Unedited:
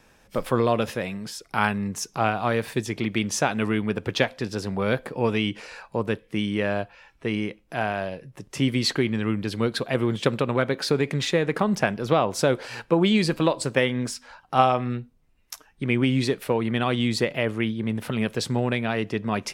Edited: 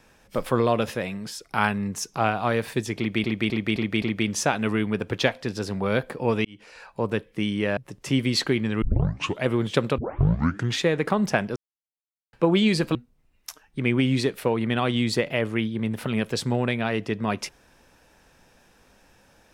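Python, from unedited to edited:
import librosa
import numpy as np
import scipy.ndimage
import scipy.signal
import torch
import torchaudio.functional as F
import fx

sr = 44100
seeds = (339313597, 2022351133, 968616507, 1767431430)

y = fx.edit(x, sr, fx.repeat(start_s=2.98, length_s=0.26, count=5),
    fx.fade_in_span(start_s=5.41, length_s=0.56),
    fx.cut(start_s=6.73, length_s=1.53),
    fx.tape_start(start_s=9.31, length_s=0.63),
    fx.tape_start(start_s=10.47, length_s=0.82),
    fx.silence(start_s=12.05, length_s=0.77),
    fx.cut(start_s=13.44, length_s=1.55), tone=tone)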